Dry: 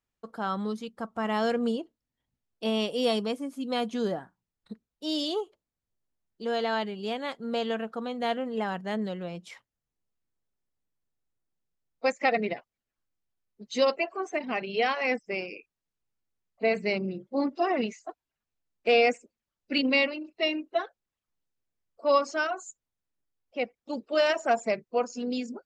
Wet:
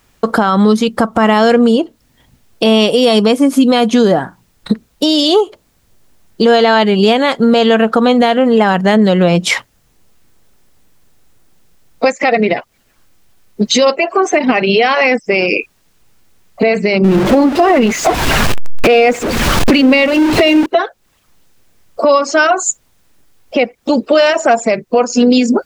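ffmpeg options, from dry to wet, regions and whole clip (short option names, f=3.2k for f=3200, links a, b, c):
-filter_complex "[0:a]asettb=1/sr,asplit=3[a][b][c];[a]atrim=end=17.044[d];[b]atrim=start=17.04:end=20.66,asetpts=PTS-STARTPTS,afade=t=in:d=0.004:c=qsin,afade=t=out:st=3.616:d=0.004:c=qsin,aeval=exprs='val(0)+0.5*0.02*sgn(val(0))':c=same,lowpass=f=2.6k:p=1[e];[c]atrim=start=20.656[f];[d][e]acrossfade=d=0.004:c1=hsin:c2=qsin[g];[g][f]acrossfade=d=0.004:c1=qsin:c2=hsin,acompressor=threshold=-40dB:ratio=6,alimiter=level_in=34.5dB:limit=-1dB:release=50:level=0:latency=1,volume=-1dB"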